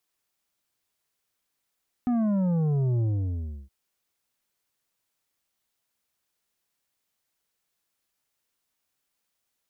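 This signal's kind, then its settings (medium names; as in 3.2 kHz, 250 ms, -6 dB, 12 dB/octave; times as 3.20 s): sub drop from 250 Hz, over 1.62 s, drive 8 dB, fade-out 0.68 s, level -22.5 dB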